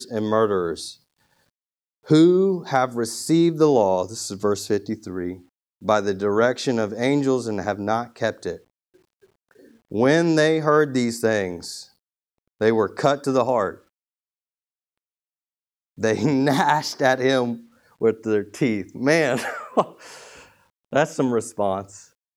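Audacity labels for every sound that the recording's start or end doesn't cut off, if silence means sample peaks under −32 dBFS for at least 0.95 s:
2.090000	8.560000	sound
9.920000	13.740000	sound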